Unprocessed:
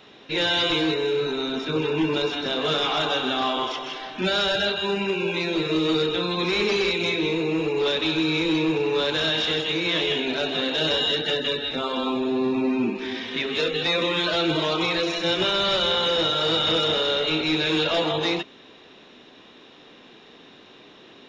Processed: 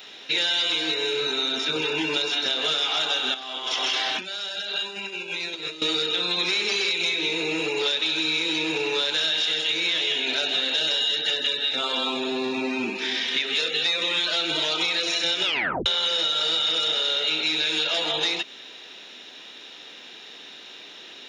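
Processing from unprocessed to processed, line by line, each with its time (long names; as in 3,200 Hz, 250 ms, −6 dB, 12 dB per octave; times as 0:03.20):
0:03.34–0:05.82: compressor whose output falls as the input rises −35 dBFS
0:15.44: tape stop 0.42 s
whole clip: spectral tilt +4 dB per octave; notch filter 1,100 Hz, Q 6.9; downward compressor, threshold −24 dBFS; level +2.5 dB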